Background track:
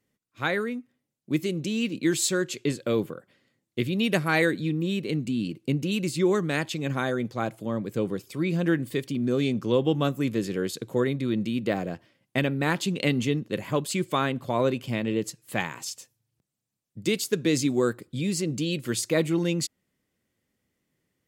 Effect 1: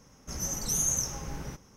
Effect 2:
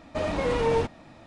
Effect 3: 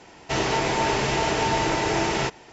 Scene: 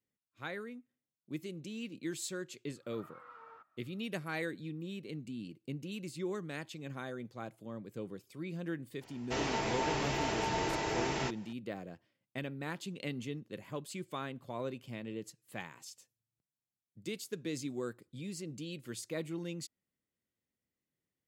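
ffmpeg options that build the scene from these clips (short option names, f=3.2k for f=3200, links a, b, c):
-filter_complex "[0:a]volume=-15dB[a];[2:a]bandpass=f=1.3k:t=q:w=14:csg=0,atrim=end=1.26,asetpts=PTS-STARTPTS,volume=-7.5dB,afade=t=in:d=0.004:c=hsin,afade=t=out:st=1.256:d=0.004:c=hsin,adelay=2760[b];[3:a]atrim=end=2.52,asetpts=PTS-STARTPTS,volume=-11dB,afade=t=in:d=0.004:c=hsin,afade=t=out:st=2.516:d=0.004:c=hsin,adelay=9010[c];[a][b][c]amix=inputs=3:normalize=0"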